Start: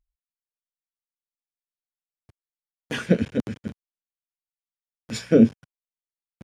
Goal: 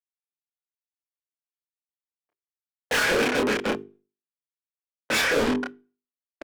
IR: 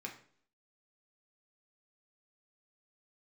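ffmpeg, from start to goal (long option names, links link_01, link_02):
-filter_complex "[0:a]agate=range=-49dB:threshold=-42dB:ratio=16:detection=peak,acrossover=split=300 2600:gain=0.0891 1 0.224[link_01][link_02][link_03];[link_01][link_02][link_03]amix=inputs=3:normalize=0,bandreject=frequency=50:width_type=h:width=6,bandreject=frequency=100:width_type=h:width=6,bandreject=frequency=150:width_type=h:width=6,bandreject=frequency=200:width_type=h:width=6,bandreject=frequency=250:width_type=h:width=6,bandreject=frequency=300:width_type=h:width=6,bandreject=frequency=350:width_type=h:width=6,bandreject=frequency=400:width_type=h:width=6,bandreject=frequency=450:width_type=h:width=6,asplit=2[link_04][link_05];[link_05]highpass=frequency=720:poles=1,volume=38dB,asoftclip=type=tanh:threshold=-8.5dB[link_06];[link_04][link_06]amix=inputs=2:normalize=0,lowpass=frequency=4200:poles=1,volume=-6dB,asoftclip=type=tanh:threshold=-23.5dB,asplit=2[link_07][link_08];[link_08]adelay=28,volume=-2.5dB[link_09];[link_07][link_09]amix=inputs=2:normalize=0,asplit=2[link_10][link_11];[1:a]atrim=start_sample=2205,asetrate=66150,aresample=44100[link_12];[link_11][link_12]afir=irnorm=-1:irlink=0,volume=-12dB[link_13];[link_10][link_13]amix=inputs=2:normalize=0"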